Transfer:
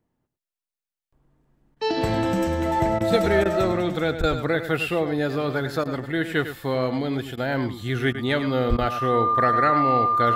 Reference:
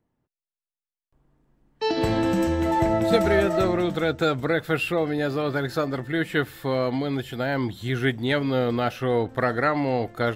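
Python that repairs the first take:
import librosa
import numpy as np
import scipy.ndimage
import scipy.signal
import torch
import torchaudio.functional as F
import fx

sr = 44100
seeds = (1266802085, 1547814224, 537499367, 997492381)

y = fx.notch(x, sr, hz=1200.0, q=30.0)
y = fx.fix_deplosive(y, sr, at_s=(4.19, 8.69))
y = fx.fix_interpolate(y, sr, at_s=(1.75, 2.99, 3.44, 4.22, 5.84, 7.36, 8.13, 8.77), length_ms=13.0)
y = fx.fix_echo_inverse(y, sr, delay_ms=101, level_db=-10.5)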